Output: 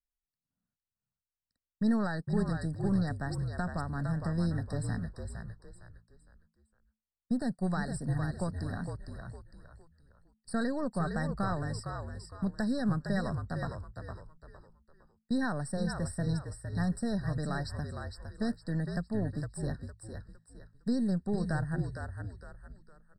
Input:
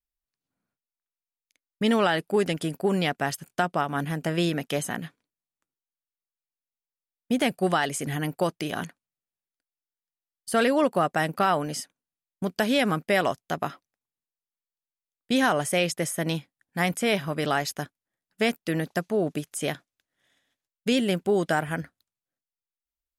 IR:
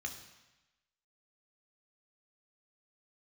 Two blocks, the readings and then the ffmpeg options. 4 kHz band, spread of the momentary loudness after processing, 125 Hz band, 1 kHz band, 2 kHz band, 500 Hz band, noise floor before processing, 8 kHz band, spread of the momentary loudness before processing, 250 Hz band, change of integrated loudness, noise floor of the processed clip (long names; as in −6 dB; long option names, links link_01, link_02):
−17.0 dB, 14 LU, +0.5 dB, −12.5 dB, −12.0 dB, −12.5 dB, below −85 dBFS, −13.0 dB, 11 LU, −4.0 dB, −8.0 dB, below −85 dBFS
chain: -filter_complex "[0:a]aeval=exprs='if(lt(val(0),0),0.708*val(0),val(0))':channel_layout=same,firequalizer=gain_entry='entry(210,0);entry(340,-14);entry(550,-10);entry(7700,-9);entry(13000,-29)':delay=0.05:min_phase=1,acrossover=split=670|920[link_01][link_02][link_03];[link_02]acompressor=threshold=-55dB:ratio=6[link_04];[link_01][link_04][link_03]amix=inputs=3:normalize=0,aexciter=amount=1.2:drive=3.5:freq=8300,asplit=2[link_05][link_06];[link_06]asplit=4[link_07][link_08][link_09][link_10];[link_07]adelay=459,afreqshift=-55,volume=-6dB[link_11];[link_08]adelay=918,afreqshift=-110,volume=-15.1dB[link_12];[link_09]adelay=1377,afreqshift=-165,volume=-24.2dB[link_13];[link_10]adelay=1836,afreqshift=-220,volume=-33.4dB[link_14];[link_11][link_12][link_13][link_14]amix=inputs=4:normalize=0[link_15];[link_05][link_15]amix=inputs=2:normalize=0,afftfilt=real='re*eq(mod(floor(b*sr/1024/1900),2),0)':imag='im*eq(mod(floor(b*sr/1024/1900),2),0)':win_size=1024:overlap=0.75"